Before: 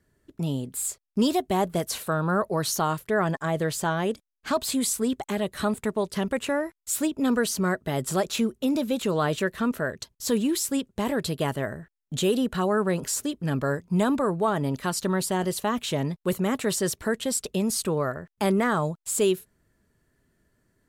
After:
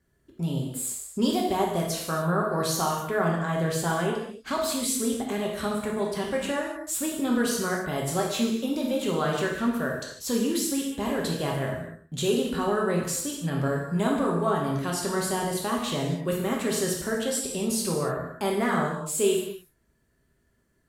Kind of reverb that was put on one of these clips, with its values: gated-style reverb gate 320 ms falling, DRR -2 dB; trim -4.5 dB

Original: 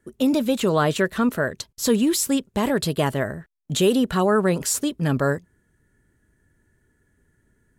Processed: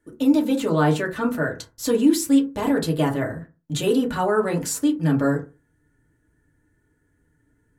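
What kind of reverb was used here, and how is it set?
FDN reverb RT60 0.31 s, low-frequency decay 1.1×, high-frequency decay 0.4×, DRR -1.5 dB; trim -5.5 dB

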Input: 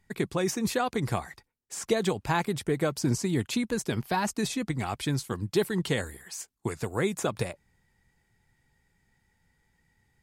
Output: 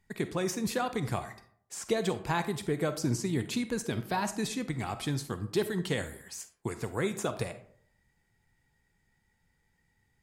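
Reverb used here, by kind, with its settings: algorithmic reverb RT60 0.61 s, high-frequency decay 0.5×, pre-delay 5 ms, DRR 10 dB; trim -3.5 dB

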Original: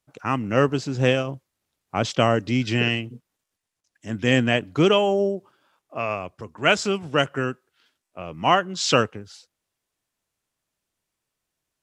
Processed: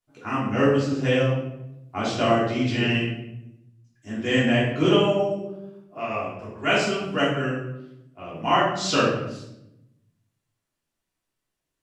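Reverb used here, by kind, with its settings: simulated room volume 270 m³, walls mixed, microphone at 3.2 m; trim -11 dB

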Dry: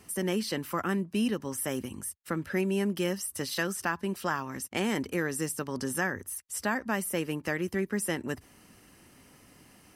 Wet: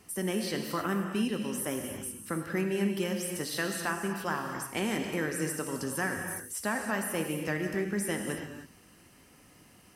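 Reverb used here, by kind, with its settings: gated-style reverb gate 340 ms flat, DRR 3 dB; trim -2.5 dB

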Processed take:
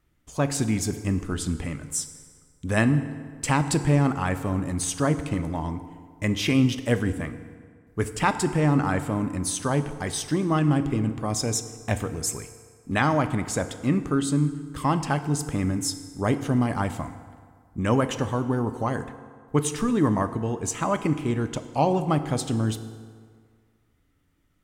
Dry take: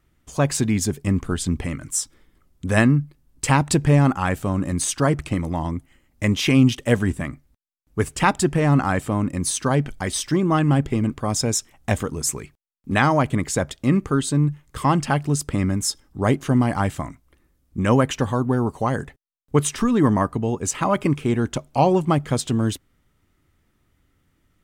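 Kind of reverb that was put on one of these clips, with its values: FDN reverb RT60 1.9 s, low-frequency decay 0.9×, high-frequency decay 0.65×, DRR 9.5 dB; trim -4.5 dB

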